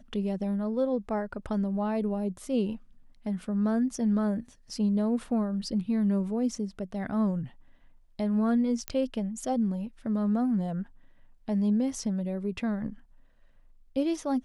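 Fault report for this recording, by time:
8.88 pop -14 dBFS

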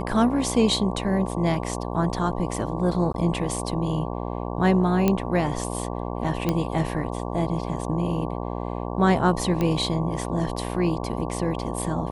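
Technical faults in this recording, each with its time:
buzz 60 Hz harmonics 19 -30 dBFS
3.13–3.14 gap 12 ms
5.08 pop -8 dBFS
6.49 pop -10 dBFS
9.61 pop -13 dBFS

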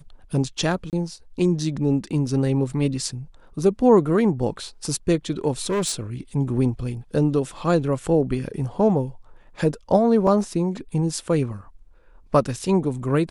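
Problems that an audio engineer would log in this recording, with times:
0.9–0.93 gap 28 ms
5.61–5.94 clipped -19.5 dBFS
10.27 gap 2.1 ms

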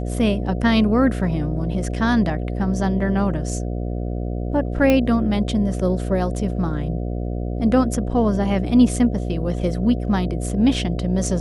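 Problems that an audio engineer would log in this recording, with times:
buzz 60 Hz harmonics 12 -25 dBFS
4.9 pop -6 dBFS

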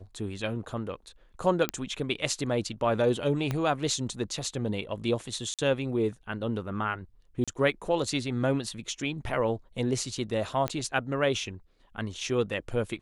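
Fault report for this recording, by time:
1.69 pop -11 dBFS
3.51 pop -16 dBFS
5.54–5.59 gap 47 ms
7.44–7.48 gap 36 ms
10.68 pop -15 dBFS

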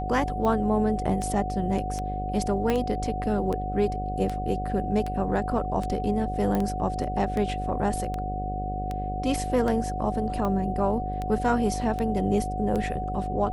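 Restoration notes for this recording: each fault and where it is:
buzz 50 Hz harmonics 15 -32 dBFS
tick 78 rpm -18 dBFS
tone 740 Hz -31 dBFS
2.7 pop -12 dBFS
6.55 pop -15 dBFS

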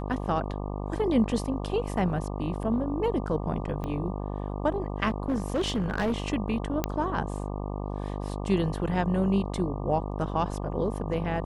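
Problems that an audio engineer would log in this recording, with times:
buzz 50 Hz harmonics 24 -33 dBFS
3.84 pop -22 dBFS
5.08–6.18 clipped -22.5 dBFS
6.84 pop -11 dBFS

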